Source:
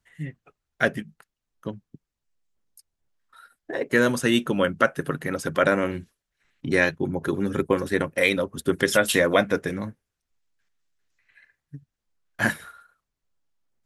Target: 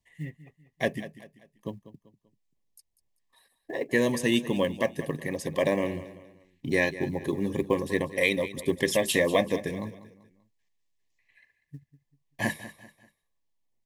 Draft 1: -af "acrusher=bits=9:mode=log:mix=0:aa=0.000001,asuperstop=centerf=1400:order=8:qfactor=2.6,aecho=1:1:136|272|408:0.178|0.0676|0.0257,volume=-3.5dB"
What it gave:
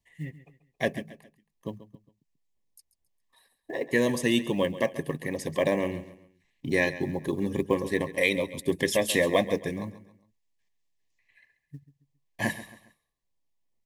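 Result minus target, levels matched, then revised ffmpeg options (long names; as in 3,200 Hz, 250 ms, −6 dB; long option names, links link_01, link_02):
echo 58 ms early
-af "acrusher=bits=9:mode=log:mix=0:aa=0.000001,asuperstop=centerf=1400:order=8:qfactor=2.6,aecho=1:1:194|388|582:0.178|0.0676|0.0257,volume=-3.5dB"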